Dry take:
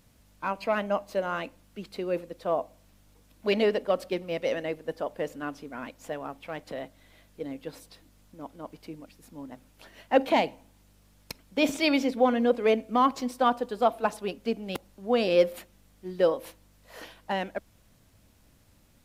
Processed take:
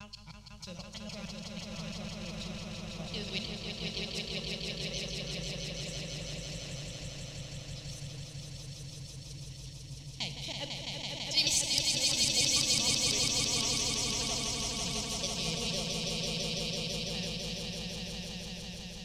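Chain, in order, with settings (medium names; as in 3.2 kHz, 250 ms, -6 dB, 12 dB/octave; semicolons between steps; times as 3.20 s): slices played last to first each 157 ms, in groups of 4; band-stop 4.7 kHz, Q 7.7; wow and flutter 120 cents; FFT filter 140 Hz 0 dB, 250 Hz -27 dB, 1.5 kHz -30 dB, 5.4 kHz +14 dB, 8.2 kHz +12 dB; level-controlled noise filter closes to 2.9 kHz, open at -20 dBFS; in parallel at -3.5 dB: saturation -19.5 dBFS, distortion -23 dB; on the sum: echo with a slow build-up 166 ms, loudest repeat 5, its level -3.5 dB; on a send at -10 dB: reverberation RT60 1.6 s, pre-delay 22 ms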